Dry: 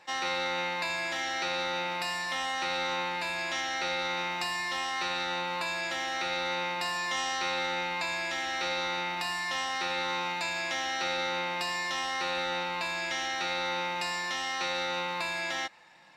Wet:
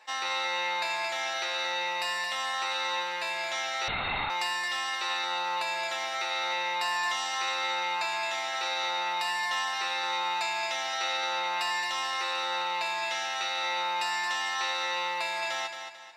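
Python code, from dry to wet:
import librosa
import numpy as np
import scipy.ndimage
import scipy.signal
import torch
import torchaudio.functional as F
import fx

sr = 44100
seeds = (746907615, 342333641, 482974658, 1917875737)

y = scipy.signal.sosfilt(scipy.signal.butter(2, 510.0, 'highpass', fs=sr, output='sos'), x)
y = y + 0.36 * np.pad(y, (int(4.6 * sr / 1000.0), 0))[:len(y)]
y = fx.echo_feedback(y, sr, ms=221, feedback_pct=37, wet_db=-7.5)
y = fx.lpc_vocoder(y, sr, seeds[0], excitation='whisper', order=10, at=(3.88, 4.3))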